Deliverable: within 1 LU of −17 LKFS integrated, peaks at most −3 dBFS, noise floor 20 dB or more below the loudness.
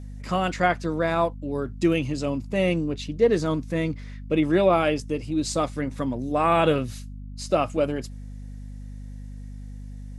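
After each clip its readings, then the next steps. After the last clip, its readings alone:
mains hum 50 Hz; hum harmonics up to 250 Hz; level of the hum −35 dBFS; integrated loudness −24.5 LKFS; sample peak −7.0 dBFS; target loudness −17.0 LKFS
→ hum removal 50 Hz, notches 5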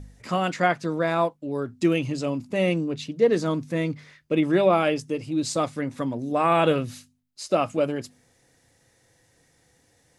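mains hum none found; integrated loudness −24.5 LKFS; sample peak −6.5 dBFS; target loudness −17.0 LKFS
→ level +7.5 dB
brickwall limiter −3 dBFS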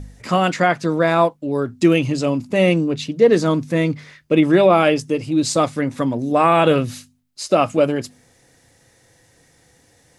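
integrated loudness −17.5 LKFS; sample peak −3.0 dBFS; background noise floor −57 dBFS

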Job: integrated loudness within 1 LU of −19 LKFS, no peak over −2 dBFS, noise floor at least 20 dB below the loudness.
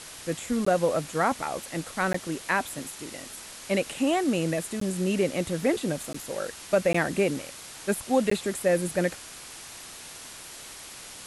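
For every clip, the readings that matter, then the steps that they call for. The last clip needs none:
number of dropouts 6; longest dropout 14 ms; background noise floor −44 dBFS; target noise floor −48 dBFS; integrated loudness −27.5 LKFS; sample peak −9.5 dBFS; target loudness −19.0 LKFS
→ repair the gap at 0:00.65/0:02.13/0:04.80/0:06.13/0:06.93/0:08.30, 14 ms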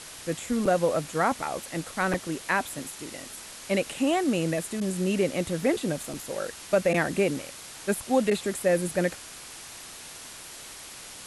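number of dropouts 0; background noise floor −44 dBFS; target noise floor −48 dBFS
→ broadband denoise 6 dB, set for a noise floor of −44 dBFS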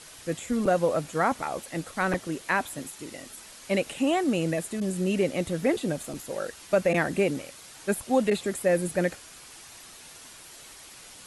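background noise floor −48 dBFS; integrated loudness −27.5 LKFS; sample peak −9.5 dBFS; target loudness −19.0 LKFS
→ level +8.5 dB
brickwall limiter −2 dBFS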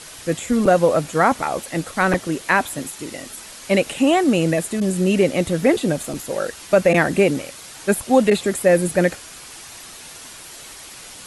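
integrated loudness −19.0 LKFS; sample peak −2.0 dBFS; background noise floor −39 dBFS

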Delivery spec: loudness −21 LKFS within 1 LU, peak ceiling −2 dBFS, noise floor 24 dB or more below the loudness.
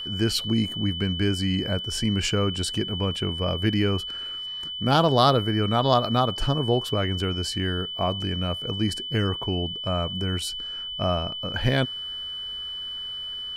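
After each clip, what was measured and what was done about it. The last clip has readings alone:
interfering tone 3,000 Hz; level of the tone −31 dBFS; integrated loudness −25.0 LKFS; sample peak −4.5 dBFS; target loudness −21.0 LKFS
→ notch filter 3,000 Hz, Q 30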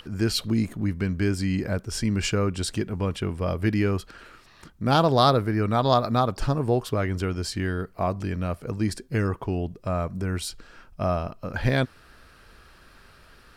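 interfering tone none found; integrated loudness −26.0 LKFS; sample peak −5.0 dBFS; target loudness −21.0 LKFS
→ level +5 dB
brickwall limiter −2 dBFS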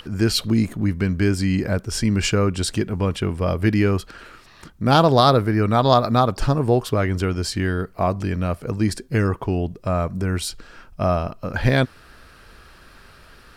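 integrated loudness −21.0 LKFS; sample peak −2.0 dBFS; background noise floor −49 dBFS

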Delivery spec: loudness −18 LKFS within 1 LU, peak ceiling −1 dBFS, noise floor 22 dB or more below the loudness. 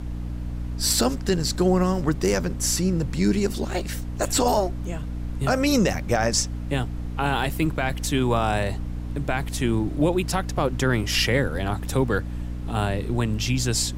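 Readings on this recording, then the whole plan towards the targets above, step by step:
mains hum 60 Hz; hum harmonics up to 300 Hz; level of the hum −28 dBFS; background noise floor −31 dBFS; target noise floor −46 dBFS; integrated loudness −24.0 LKFS; sample peak −8.5 dBFS; target loudness −18.0 LKFS
→ mains-hum notches 60/120/180/240/300 Hz
noise reduction from a noise print 15 dB
level +6 dB

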